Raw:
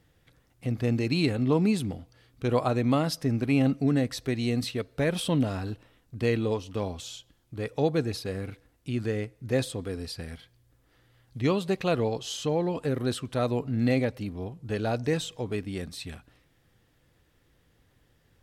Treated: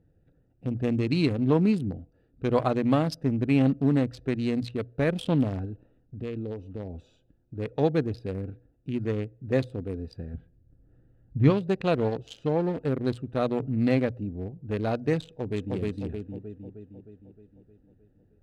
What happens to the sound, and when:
5.65–6.94 s: compression 2:1, threshold -36 dBFS
10.34–11.50 s: tone controls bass +9 dB, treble -10 dB
15.25–15.76 s: echo throw 310 ms, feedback 60%, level -0.5 dB
whole clip: local Wiener filter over 41 samples; treble shelf 6 kHz -9.5 dB; hum notches 60/120 Hz; trim +2 dB

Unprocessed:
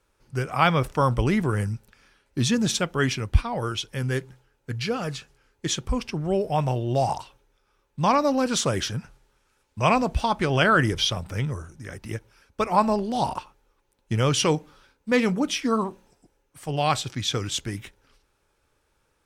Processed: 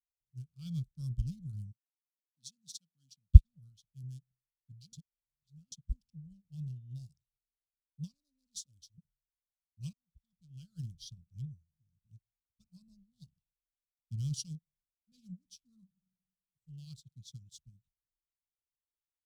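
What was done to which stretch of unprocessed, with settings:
1.71–3.28 s: high-pass 560 Hz -> 240 Hz
4.93–5.72 s: reverse
8.13–8.98 s: static phaser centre 400 Hz, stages 4
9.93–10.98 s: fade in
15.83–16.70 s: reverb throw, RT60 1.2 s, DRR 5 dB
whole clip: local Wiener filter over 9 samples; elliptic band-stop 170–4300 Hz, stop band 40 dB; upward expansion 2.5:1, over -41 dBFS; trim +5.5 dB

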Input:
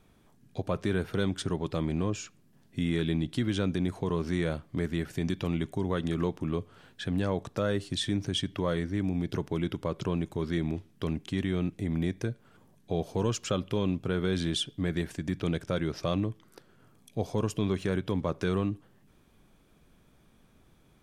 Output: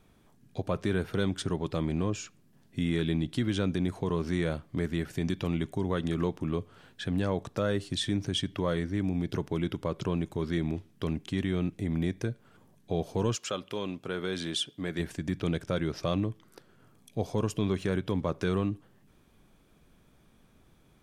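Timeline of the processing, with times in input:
13.35–14.98 s: high-pass 640 Hz -> 280 Hz 6 dB/octave

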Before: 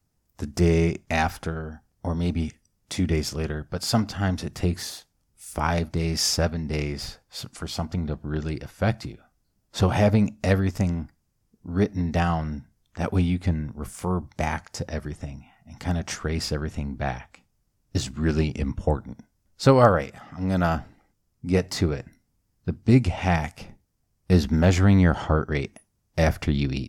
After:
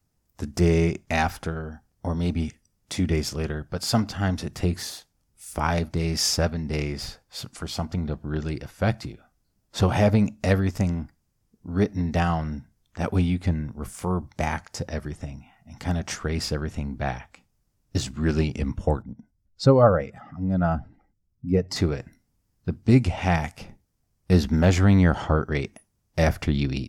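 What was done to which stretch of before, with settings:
19.02–21.76 s: spectral contrast enhancement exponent 1.5

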